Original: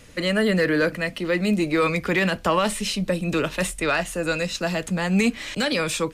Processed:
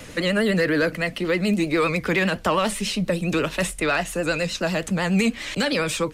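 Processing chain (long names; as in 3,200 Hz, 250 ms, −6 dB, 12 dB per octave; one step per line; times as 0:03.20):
pitch vibrato 9.8 Hz 76 cents
multiband upward and downward compressor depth 40%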